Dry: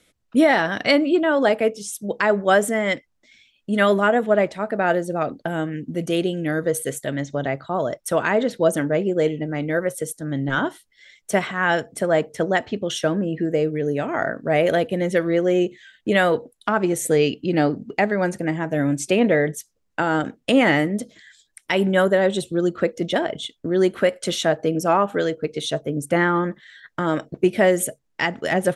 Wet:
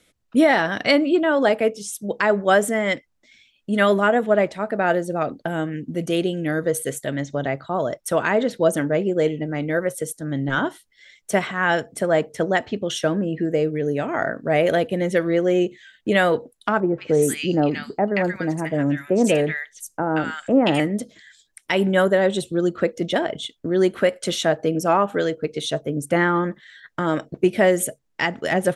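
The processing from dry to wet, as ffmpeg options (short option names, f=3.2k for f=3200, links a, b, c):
-filter_complex "[0:a]asettb=1/sr,asplit=3[a][b][c];[a]atrim=end=16.804[d];[b]atrim=start=16.8:end=20.8,asetpts=PTS-STARTPTS,afade=t=in:d=0.004:c=qsin,afade=t=out:st=3.996:d=0.004:c=qsin,acrossover=split=1300|5500[e][f][g];[f]adelay=180[h];[g]adelay=260[i];[e][h][i]amix=inputs=3:normalize=0,atrim=end_sample=176400[j];[c]atrim=start=20.796[k];[d][j]acrossfade=d=0.004:c1=hsin:c2=qsin[l];[l][k]acrossfade=d=0.004:c1=qsin:c2=hsin"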